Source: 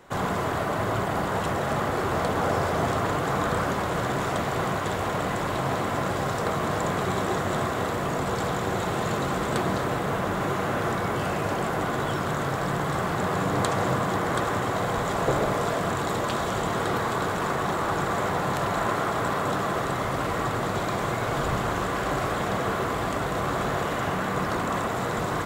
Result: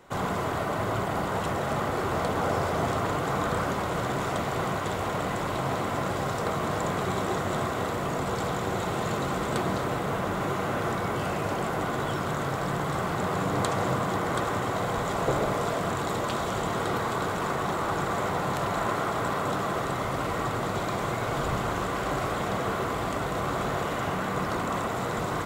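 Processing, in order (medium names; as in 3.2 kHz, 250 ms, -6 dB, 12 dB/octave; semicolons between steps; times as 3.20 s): band-stop 1.7 kHz, Q 17; trim -2 dB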